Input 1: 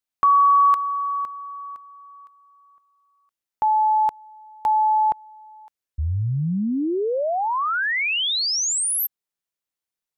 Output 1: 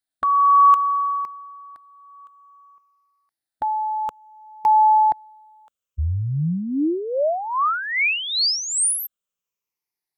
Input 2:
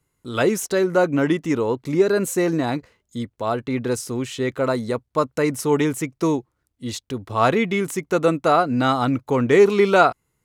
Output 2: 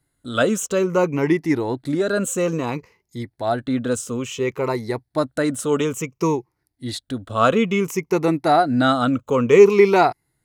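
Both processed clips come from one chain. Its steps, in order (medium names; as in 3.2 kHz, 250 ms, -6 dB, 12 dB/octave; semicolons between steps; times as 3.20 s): drifting ripple filter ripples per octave 0.79, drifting -0.58 Hz, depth 11 dB; trim -1 dB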